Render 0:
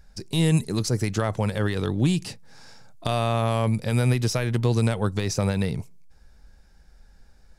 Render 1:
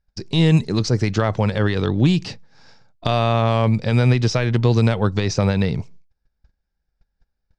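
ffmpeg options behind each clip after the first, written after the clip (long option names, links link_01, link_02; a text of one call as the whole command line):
ffmpeg -i in.wav -af "lowpass=frequency=5700:width=0.5412,lowpass=frequency=5700:width=1.3066,agate=range=-28dB:threshold=-44dB:ratio=16:detection=peak,volume=5.5dB" out.wav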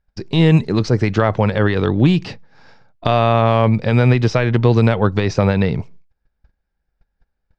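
ffmpeg -i in.wav -af "bass=frequency=250:gain=-3,treble=frequency=4000:gain=-13,volume=5dB" out.wav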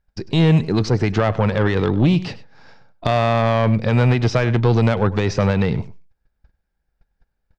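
ffmpeg -i in.wav -af "asoftclip=type=tanh:threshold=-8dB,aecho=1:1:100:0.133" out.wav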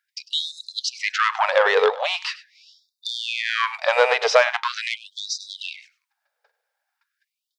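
ffmpeg -i in.wav -af "afftfilt=real='re*gte(b*sr/1024,410*pow(3600/410,0.5+0.5*sin(2*PI*0.42*pts/sr)))':imag='im*gte(b*sr/1024,410*pow(3600/410,0.5+0.5*sin(2*PI*0.42*pts/sr)))':win_size=1024:overlap=0.75,volume=6.5dB" out.wav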